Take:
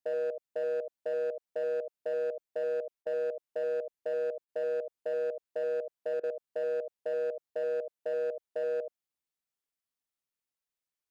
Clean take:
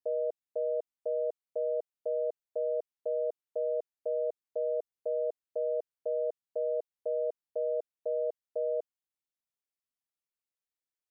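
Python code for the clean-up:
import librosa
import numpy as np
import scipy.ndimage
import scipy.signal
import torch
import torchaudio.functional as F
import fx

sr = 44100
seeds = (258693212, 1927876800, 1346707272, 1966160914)

y = fx.fix_declip(x, sr, threshold_db=-27.5)
y = fx.fix_interpolate(y, sr, at_s=(3.03, 4.45, 6.2), length_ms=33.0)
y = fx.fix_echo_inverse(y, sr, delay_ms=75, level_db=-7.5)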